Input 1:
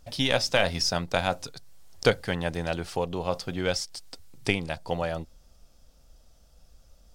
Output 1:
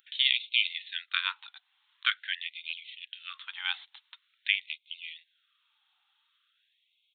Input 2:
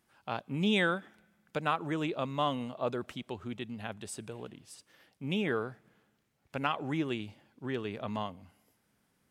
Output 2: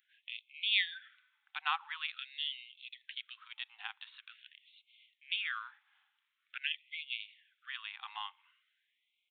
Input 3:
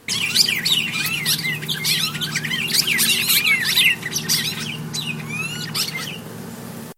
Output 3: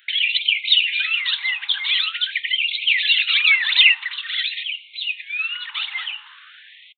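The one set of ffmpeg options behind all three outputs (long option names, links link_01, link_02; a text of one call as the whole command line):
ffmpeg -i in.wav -af "aresample=8000,aresample=44100,crystalizer=i=10:c=0,afftfilt=real='re*gte(b*sr/1024,730*pow(2100/730,0.5+0.5*sin(2*PI*0.46*pts/sr)))':imag='im*gte(b*sr/1024,730*pow(2100/730,0.5+0.5*sin(2*PI*0.46*pts/sr)))':win_size=1024:overlap=0.75,volume=-9dB" out.wav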